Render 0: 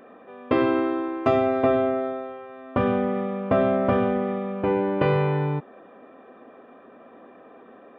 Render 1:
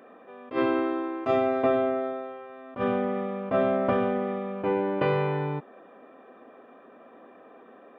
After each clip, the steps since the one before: HPF 190 Hz 6 dB/oct; attack slew limiter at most 250 dB/s; gain -2 dB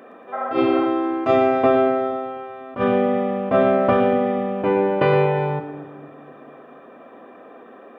split-band echo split 340 Hz, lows 0.242 s, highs 0.116 s, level -11 dB; spectral repair 0.35–0.83, 520–2100 Hz after; gain +7 dB

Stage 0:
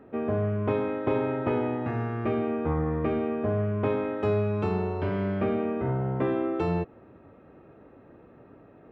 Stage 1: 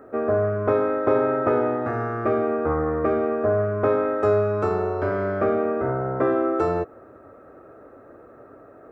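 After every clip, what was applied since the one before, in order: EQ curve 110 Hz 0 dB, 180 Hz -6 dB, 260 Hz +2 dB, 640 Hz +10 dB, 930 Hz +2 dB, 1300 Hz +13 dB, 3000 Hz -8 dB, 5000 Hz +5 dB, 7700 Hz +11 dB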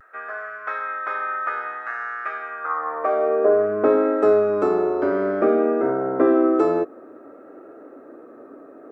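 high-pass sweep 1600 Hz -> 280 Hz, 2.56–3.72; vibrato 0.56 Hz 33 cents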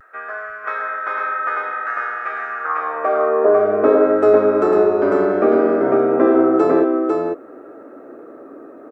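echo 0.499 s -3.5 dB; gain +3 dB

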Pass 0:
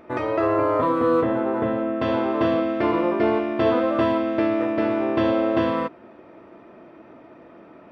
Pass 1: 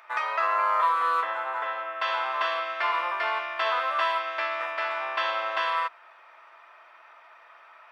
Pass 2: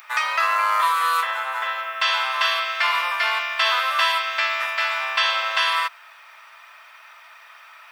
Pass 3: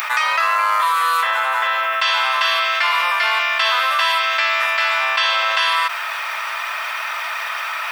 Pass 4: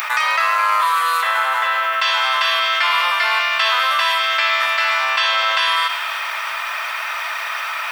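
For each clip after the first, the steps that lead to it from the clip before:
HPF 1000 Hz 24 dB/oct; gain +4.5 dB
tilt +6 dB/oct; gain +2.5 dB
fast leveller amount 70%; gain +1 dB
thin delay 0.103 s, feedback 73%, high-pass 1600 Hz, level -11 dB

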